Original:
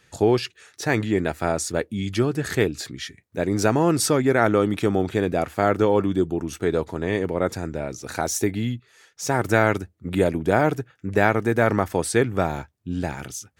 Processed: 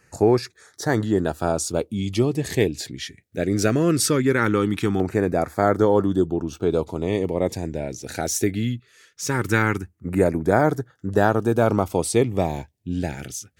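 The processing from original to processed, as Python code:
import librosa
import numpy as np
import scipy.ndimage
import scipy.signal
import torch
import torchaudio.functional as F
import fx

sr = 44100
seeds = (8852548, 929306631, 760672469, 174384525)

y = fx.peak_eq(x, sr, hz=3800.0, db=-8.5, octaves=0.66, at=(9.62, 10.16))
y = fx.filter_lfo_notch(y, sr, shape='saw_down', hz=0.2, low_hz=550.0, high_hz=3500.0, q=1.1)
y = fx.peak_eq(y, sr, hz=10000.0, db=-13.5, octaves=0.88, at=(6.26, 6.71))
y = y * librosa.db_to_amplitude(1.5)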